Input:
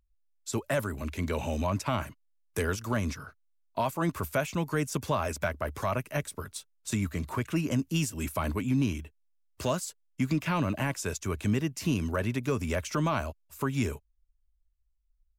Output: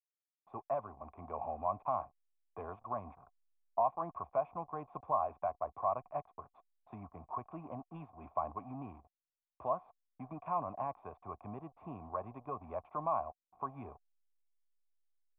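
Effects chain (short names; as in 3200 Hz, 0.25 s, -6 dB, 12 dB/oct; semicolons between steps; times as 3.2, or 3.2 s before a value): backlash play -35.5 dBFS; vocal tract filter a; gain +7.5 dB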